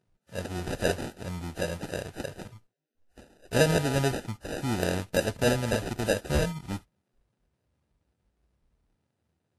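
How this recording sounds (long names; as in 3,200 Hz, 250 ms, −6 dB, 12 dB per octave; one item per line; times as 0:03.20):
aliases and images of a low sample rate 1,100 Hz, jitter 0%
Ogg Vorbis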